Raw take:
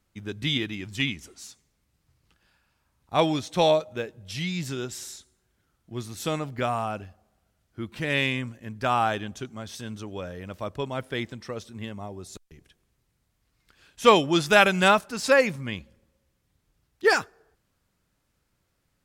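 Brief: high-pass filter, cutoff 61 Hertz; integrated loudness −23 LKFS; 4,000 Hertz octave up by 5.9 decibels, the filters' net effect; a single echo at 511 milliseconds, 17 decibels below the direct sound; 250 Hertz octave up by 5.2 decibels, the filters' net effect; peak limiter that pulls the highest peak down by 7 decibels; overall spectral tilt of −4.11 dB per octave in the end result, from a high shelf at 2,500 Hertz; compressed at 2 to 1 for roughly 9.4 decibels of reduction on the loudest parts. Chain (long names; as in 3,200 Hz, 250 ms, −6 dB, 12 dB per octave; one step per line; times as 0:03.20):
high-pass filter 61 Hz
parametric band 250 Hz +7 dB
high-shelf EQ 2,500 Hz +3 dB
parametric band 4,000 Hz +5 dB
downward compressor 2 to 1, threshold −26 dBFS
brickwall limiter −17 dBFS
single-tap delay 511 ms −17 dB
level +7.5 dB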